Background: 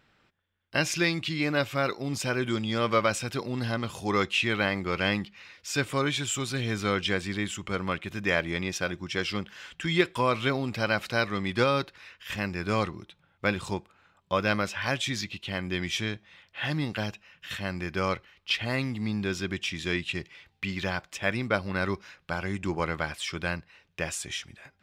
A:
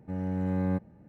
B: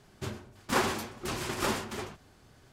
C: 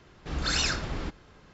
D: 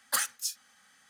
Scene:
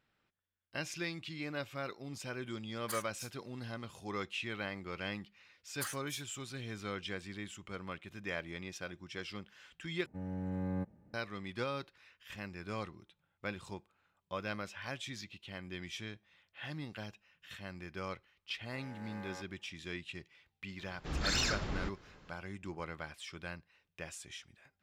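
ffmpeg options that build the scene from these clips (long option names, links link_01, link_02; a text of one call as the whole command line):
ffmpeg -i bed.wav -i cue0.wav -i cue1.wav -i cue2.wav -i cue3.wav -filter_complex "[4:a]asplit=2[link_01][link_02];[1:a]asplit=2[link_03][link_04];[0:a]volume=-13.5dB[link_05];[link_02]asplit=2[link_06][link_07];[link_07]adelay=16,volume=-11dB[link_08];[link_06][link_08]amix=inputs=2:normalize=0[link_09];[link_04]highpass=1100[link_10];[3:a]asoftclip=type=tanh:threshold=-18dB[link_11];[link_05]asplit=2[link_12][link_13];[link_12]atrim=end=10.064[link_14];[link_03]atrim=end=1.08,asetpts=PTS-STARTPTS,volume=-8.5dB[link_15];[link_13]atrim=start=11.136[link_16];[link_01]atrim=end=1.09,asetpts=PTS-STARTPTS,volume=-14.5dB,afade=type=in:duration=0.004:curve=hsin,afade=type=out:start_time=1.086:duration=0.004:curve=hsin,adelay=2760[link_17];[link_09]atrim=end=1.09,asetpts=PTS-STARTPTS,volume=-13dB,afade=type=in:duration=0.004:curve=hsin,afade=type=out:start_time=1.086:duration=0.004:curve=hsin,adelay=5680[link_18];[link_10]atrim=end=1.08,asetpts=PTS-STARTPTS,volume=-2dB,afade=type=in:duration=0.004:curve=hsin,afade=type=out:start_time=1.076:duration=0.004:curve=hsin,adelay=18640[link_19];[link_11]atrim=end=1.53,asetpts=PTS-STARTPTS,volume=-4.5dB,afade=type=in:duration=0.004:curve=hsin,afade=type=out:start_time=1.526:duration=0.004:curve=hsin,adelay=20790[link_20];[link_14][link_15]acrossfade=duration=0.004:curve1=hsin:curve2=hsin[link_21];[link_21][link_16]acrossfade=duration=0.004:curve1=hsin:curve2=hsin[link_22];[link_22][link_17][link_18][link_19][link_20]amix=inputs=5:normalize=0" out.wav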